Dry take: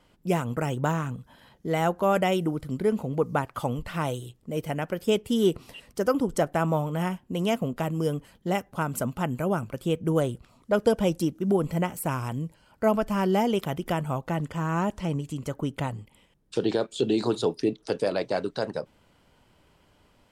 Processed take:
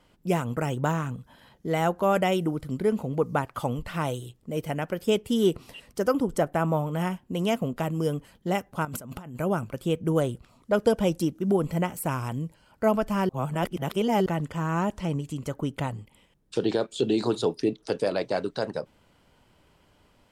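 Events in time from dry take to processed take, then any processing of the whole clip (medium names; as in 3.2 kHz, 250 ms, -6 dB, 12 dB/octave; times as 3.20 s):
6.13–6.94 s: dynamic bell 5.1 kHz, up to -5 dB, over -46 dBFS, Q 0.74
8.85–9.36 s: compressor with a negative ratio -39 dBFS
13.29–14.26 s: reverse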